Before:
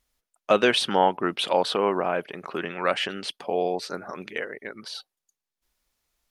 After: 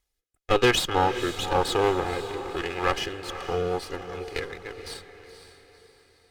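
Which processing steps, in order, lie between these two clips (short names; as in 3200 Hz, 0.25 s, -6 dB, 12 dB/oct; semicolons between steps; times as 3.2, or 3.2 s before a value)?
minimum comb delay 2.4 ms; rotary speaker horn 1 Hz, later 5.5 Hz, at 3.11; diffused feedback echo 0.503 s, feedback 44%, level -11 dB; gain +1 dB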